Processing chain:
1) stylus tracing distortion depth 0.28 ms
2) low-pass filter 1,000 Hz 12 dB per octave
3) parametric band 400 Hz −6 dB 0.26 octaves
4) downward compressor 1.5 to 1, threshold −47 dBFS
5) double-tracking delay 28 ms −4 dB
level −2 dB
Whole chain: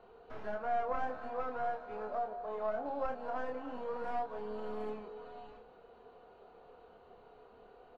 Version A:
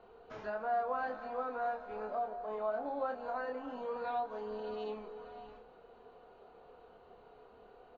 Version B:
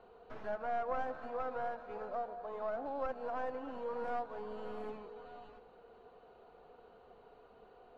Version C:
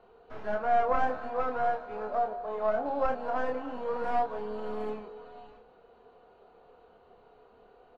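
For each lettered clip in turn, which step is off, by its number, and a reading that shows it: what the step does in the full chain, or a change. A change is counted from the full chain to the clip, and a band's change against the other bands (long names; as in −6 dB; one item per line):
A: 1, 4 kHz band +2.0 dB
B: 5, change in integrated loudness −1.5 LU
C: 4, average gain reduction 4.0 dB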